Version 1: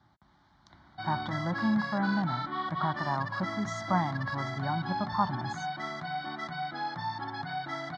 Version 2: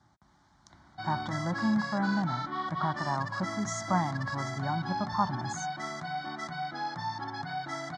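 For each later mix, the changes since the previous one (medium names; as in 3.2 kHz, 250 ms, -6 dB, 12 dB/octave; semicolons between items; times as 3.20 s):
master: add resonant high shelf 5.2 kHz +10 dB, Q 1.5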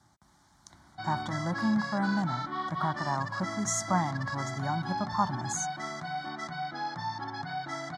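speech: remove distance through air 110 m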